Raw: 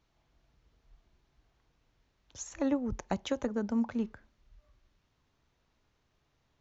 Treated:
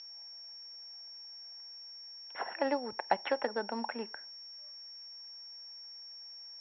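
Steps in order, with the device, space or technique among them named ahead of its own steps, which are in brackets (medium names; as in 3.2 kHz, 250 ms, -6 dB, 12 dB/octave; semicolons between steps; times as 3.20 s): toy sound module (decimation joined by straight lines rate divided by 6×; class-D stage that switches slowly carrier 5.5 kHz; cabinet simulation 740–3600 Hz, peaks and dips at 830 Hz +4 dB, 1.2 kHz -9 dB, 1.8 kHz +4 dB, 2.7 kHz +4 dB); trim +9 dB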